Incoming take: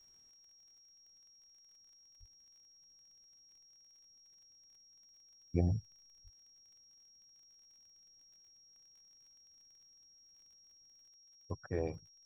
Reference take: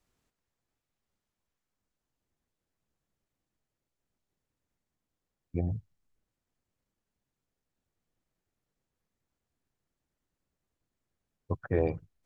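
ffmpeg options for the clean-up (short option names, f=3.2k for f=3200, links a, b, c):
-filter_complex "[0:a]adeclick=t=4,bandreject=f=5.6k:w=30,asplit=3[a][b][c];[a]afade=t=out:st=2.19:d=0.02[d];[b]highpass=f=140:w=0.5412,highpass=f=140:w=1.3066,afade=t=in:st=2.19:d=0.02,afade=t=out:st=2.31:d=0.02[e];[c]afade=t=in:st=2.31:d=0.02[f];[d][e][f]amix=inputs=3:normalize=0,asplit=3[g][h][i];[g]afade=t=out:st=6.23:d=0.02[j];[h]highpass=f=140:w=0.5412,highpass=f=140:w=1.3066,afade=t=in:st=6.23:d=0.02,afade=t=out:st=6.35:d=0.02[k];[i]afade=t=in:st=6.35:d=0.02[l];[j][k][l]amix=inputs=3:normalize=0,asetnsamples=n=441:p=0,asendcmd='11.09 volume volume 9dB',volume=0dB"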